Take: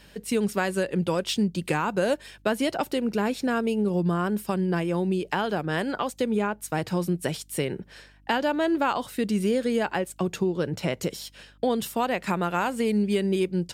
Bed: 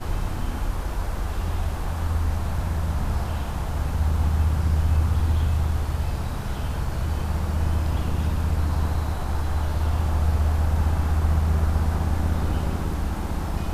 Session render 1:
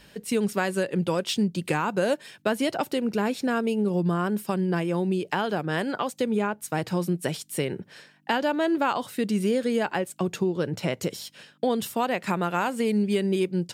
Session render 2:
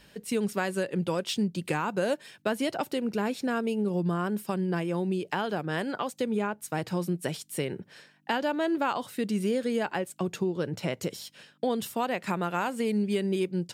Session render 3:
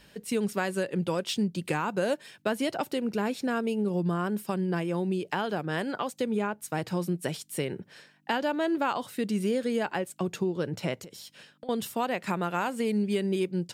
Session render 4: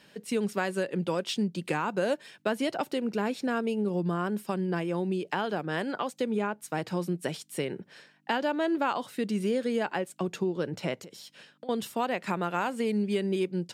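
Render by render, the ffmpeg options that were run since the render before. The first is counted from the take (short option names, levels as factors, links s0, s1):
-af "bandreject=f=50:t=h:w=4,bandreject=f=100:t=h:w=4"
-af "volume=0.668"
-filter_complex "[0:a]asettb=1/sr,asplit=3[s0][s1][s2];[s0]atrim=end=10.974[s3];[s1]atrim=start=10.97:end=11.69,asetpts=PTS-STARTPTS,afade=t=in:d=0.004:c=qsin,afade=t=out:st=0.716:d=0.004:c=qsin,acompressor=threshold=0.01:ratio=16:attack=3.2:release=140:knee=1:detection=peak[s4];[s2]atrim=start=11.686[s5];[s3][s4]acrossfade=d=0.004:c1=hsin:c2=qsin[s6];[s6][s5]acrossfade=d=0.004:c1=qsin:c2=hsin"
-af "highpass=150,highshelf=f=9700:g=-8"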